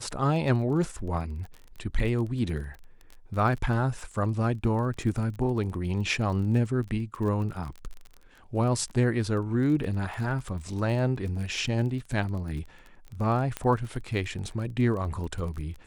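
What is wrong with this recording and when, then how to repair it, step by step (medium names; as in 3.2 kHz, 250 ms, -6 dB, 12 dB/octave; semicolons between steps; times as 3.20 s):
crackle 26 per s -35 dBFS
13.57 s: pop -15 dBFS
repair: de-click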